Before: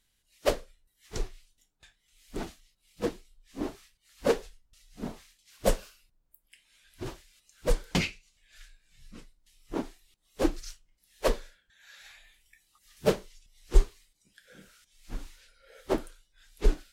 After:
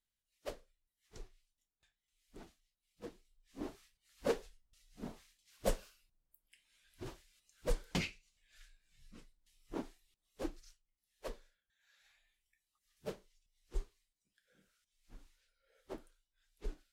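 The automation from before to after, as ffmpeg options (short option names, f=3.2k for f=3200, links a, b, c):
-af "volume=-9dB,afade=t=in:st=3.05:d=0.67:silence=0.334965,afade=t=out:st=9.81:d=0.89:silence=0.316228"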